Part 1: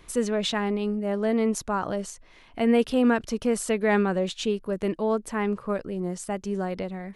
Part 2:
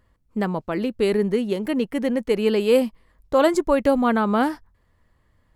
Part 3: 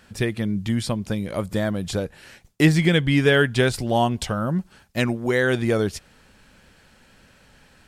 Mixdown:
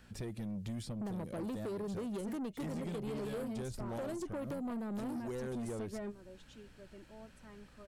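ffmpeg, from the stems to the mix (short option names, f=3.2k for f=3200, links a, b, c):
-filter_complex "[0:a]aecho=1:1:3.2:0.7,alimiter=limit=-15dB:level=0:latency=1:release=361,adelay=2100,volume=-10.5dB[a];[1:a]highpass=99,adelay=650,volume=-2.5dB[b];[2:a]aeval=exprs='val(0)+0.00178*(sin(2*PI*60*n/s)+sin(2*PI*2*60*n/s)/2+sin(2*PI*3*60*n/s)/3+sin(2*PI*4*60*n/s)/4+sin(2*PI*5*60*n/s)/5)':c=same,volume=-9.5dB,asplit=2[c][d];[d]apad=whole_len=408345[e];[a][e]sidechaingate=range=-19dB:threshold=-54dB:ratio=16:detection=peak[f];[b][c]amix=inputs=2:normalize=0,equalizer=f=68:t=o:w=1.1:g=-7.5,acompressor=threshold=-25dB:ratio=6,volume=0dB[g];[f][g]amix=inputs=2:normalize=0,lowshelf=f=150:g=8,acrossover=split=710|5200[h][i][j];[h]acompressor=threshold=-33dB:ratio=4[k];[i]acompressor=threshold=-54dB:ratio=4[l];[j]acompressor=threshold=-53dB:ratio=4[m];[k][l][m]amix=inputs=3:normalize=0,asoftclip=type=tanh:threshold=-35.5dB"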